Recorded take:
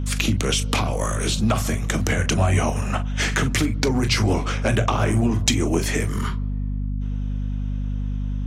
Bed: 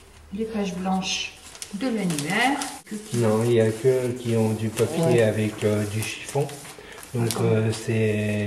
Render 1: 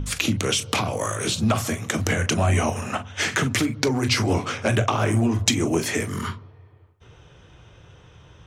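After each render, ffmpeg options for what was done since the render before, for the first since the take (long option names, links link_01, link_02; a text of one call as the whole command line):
ffmpeg -i in.wav -af "bandreject=frequency=50:width_type=h:width=4,bandreject=frequency=100:width_type=h:width=4,bandreject=frequency=150:width_type=h:width=4,bandreject=frequency=200:width_type=h:width=4,bandreject=frequency=250:width_type=h:width=4" out.wav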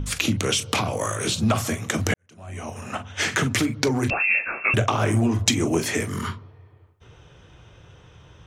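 ffmpeg -i in.wav -filter_complex "[0:a]asettb=1/sr,asplit=3[link_01][link_02][link_03];[link_01]atrim=end=4.104[link_04];[link_02]atrim=start=4.1:end=4.74,asetpts=PTS-STARTPTS,afade=type=in:duration=0.004:curve=qsin,afade=type=out:start_time=0.636:duration=0.004:curve=qsin,lowpass=frequency=2400:width_type=q:width=0.5098,lowpass=frequency=2400:width_type=q:width=0.6013,lowpass=frequency=2400:width_type=q:width=0.9,lowpass=frequency=2400:width_type=q:width=2.563,afreqshift=-2800[link_05];[link_03]atrim=start=4.736[link_06];[link_04][link_05]acrossfade=duration=0.004:curve1=hsin:curve2=qsin[link_07];[link_07][link_06]acrossfade=duration=0.004:curve1=qsin:curve2=hsin,asplit=2[link_08][link_09];[link_08]atrim=end=2.14,asetpts=PTS-STARTPTS,afade=type=out:start_time=2.136:duration=0.004:curve=hsin[link_10];[link_09]atrim=start=2.14,asetpts=PTS-STARTPTS,afade=type=in:duration=0.97:curve=qua[link_11];[link_10][link_11]concat=n=2:v=0:a=1" out.wav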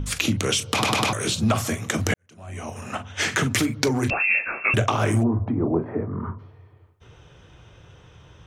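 ffmpeg -i in.wav -filter_complex "[0:a]asettb=1/sr,asplit=3[link_01][link_02][link_03];[link_01]atrim=end=3.504[link_04];[link_02]atrim=start=3.5:end=3.93,asetpts=PTS-STARTPTS,afade=type=in:duration=0.004:curve=qsin,afade=type=out:start_time=0.426:duration=0.004:curve=qsin,highshelf=frequency=9700:gain=5.5[link_05];[link_03]atrim=start=3.926[link_06];[link_04][link_05]acrossfade=duration=0.004:curve1=hsin:curve2=qsin[link_07];[link_07][link_06]acrossfade=duration=0.004:curve1=qsin:curve2=hsin,asplit=3[link_08][link_09][link_10];[link_08]afade=type=out:start_time=5.22:duration=0.02[link_11];[link_09]lowpass=frequency=1100:width=0.5412,lowpass=frequency=1100:width=1.3066,afade=type=in:start_time=5.22:duration=0.02,afade=type=out:start_time=6.38:duration=0.02[link_12];[link_10]afade=type=in:start_time=6.38:duration=0.02[link_13];[link_11][link_12][link_13]amix=inputs=3:normalize=0,asplit=5[link_14][link_15][link_16][link_17][link_18];[link_14]atrim=end=0.832[link_19];[link_15]atrim=start=0.728:end=0.832[link_20];[link_16]atrim=start=0.728:end=0.832[link_21];[link_17]atrim=start=0.728:end=0.832[link_22];[link_18]atrim=start=1.128[link_23];[link_19][link_20]acrossfade=duration=0.004:curve1=hsin:curve2=hsin[link_24];[link_24][link_21]acrossfade=duration=0.004:curve1=hsin:curve2=hsin[link_25];[link_25][link_22]acrossfade=duration=0.004:curve1=hsin:curve2=hsin[link_26];[link_26][link_23]acrossfade=duration=0.004:curve1=hsin:curve2=hsin" out.wav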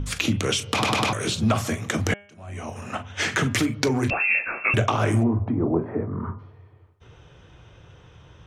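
ffmpeg -i in.wav -af "highshelf=frequency=7100:gain=-7,bandreject=frequency=202.8:width_type=h:width=4,bandreject=frequency=405.6:width_type=h:width=4,bandreject=frequency=608.4:width_type=h:width=4,bandreject=frequency=811.2:width_type=h:width=4,bandreject=frequency=1014:width_type=h:width=4,bandreject=frequency=1216.8:width_type=h:width=4,bandreject=frequency=1419.6:width_type=h:width=4,bandreject=frequency=1622.4:width_type=h:width=4,bandreject=frequency=1825.2:width_type=h:width=4,bandreject=frequency=2028:width_type=h:width=4,bandreject=frequency=2230.8:width_type=h:width=4,bandreject=frequency=2433.6:width_type=h:width=4,bandreject=frequency=2636.4:width_type=h:width=4,bandreject=frequency=2839.2:width_type=h:width=4,bandreject=frequency=3042:width_type=h:width=4,bandreject=frequency=3244.8:width_type=h:width=4,bandreject=frequency=3447.6:width_type=h:width=4" out.wav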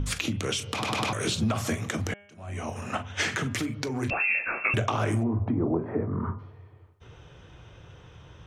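ffmpeg -i in.wav -af "acompressor=threshold=-22dB:ratio=6,alimiter=limit=-14dB:level=0:latency=1:release=438" out.wav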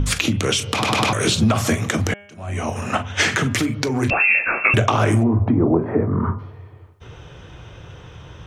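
ffmpeg -i in.wav -af "volume=9.5dB" out.wav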